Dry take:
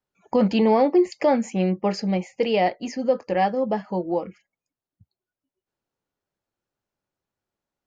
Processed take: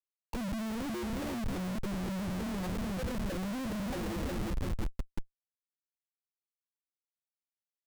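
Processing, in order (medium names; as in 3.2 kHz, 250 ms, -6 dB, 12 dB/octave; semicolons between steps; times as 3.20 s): rattle on loud lows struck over -31 dBFS, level -27 dBFS; auto-wah 210–3600 Hz, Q 3.9, down, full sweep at -19.5 dBFS; peak limiter -23 dBFS, peak gain reduction 9.5 dB; two-band feedback delay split 830 Hz, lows 348 ms, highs 122 ms, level -8.5 dB; Schmitt trigger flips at -44 dBFS; bass shelf 100 Hz +10.5 dB; trim -3 dB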